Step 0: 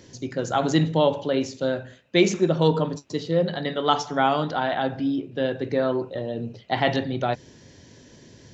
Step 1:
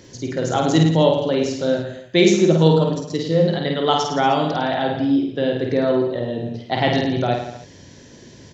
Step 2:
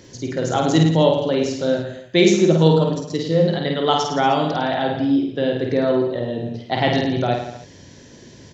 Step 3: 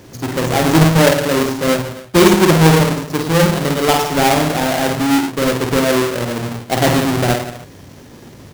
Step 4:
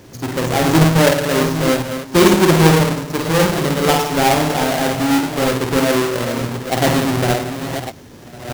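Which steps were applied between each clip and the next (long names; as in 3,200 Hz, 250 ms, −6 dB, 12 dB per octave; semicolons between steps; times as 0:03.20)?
dynamic equaliser 1,300 Hz, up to −5 dB, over −35 dBFS, Q 1.1; reverse bouncing-ball delay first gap 50 ms, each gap 1.1×, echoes 5; level +3.5 dB
no processing that can be heard
each half-wave held at its own peak
delay that plays each chunk backwards 609 ms, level −9 dB; level −1.5 dB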